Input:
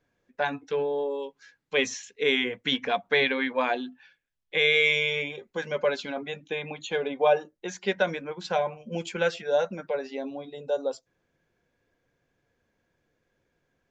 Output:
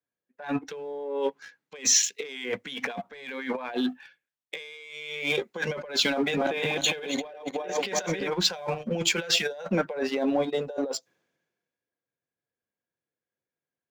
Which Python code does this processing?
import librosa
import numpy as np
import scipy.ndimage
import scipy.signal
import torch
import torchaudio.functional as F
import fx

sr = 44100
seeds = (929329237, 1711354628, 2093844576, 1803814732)

y = fx.reverse_delay_fb(x, sr, ms=174, feedback_pct=49, wet_db=-3, at=(6.12, 8.3))
y = scipy.signal.sosfilt(scipy.signal.butter(2, 160.0, 'highpass', fs=sr, output='sos'), y)
y = fx.peak_eq(y, sr, hz=240.0, db=-2.0, octaves=2.4)
y = fx.leveller(y, sr, passes=1)
y = fx.over_compress(y, sr, threshold_db=-34.0, ratio=-1.0)
y = 10.0 ** (-20.0 / 20.0) * np.tanh(y / 10.0 ** (-20.0 / 20.0))
y = fx.band_widen(y, sr, depth_pct=70)
y = y * librosa.db_to_amplitude(3.5)